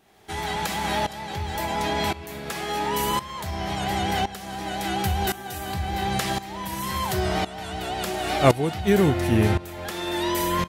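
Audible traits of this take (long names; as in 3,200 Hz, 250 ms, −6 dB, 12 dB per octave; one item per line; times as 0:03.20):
tremolo saw up 0.94 Hz, depth 85%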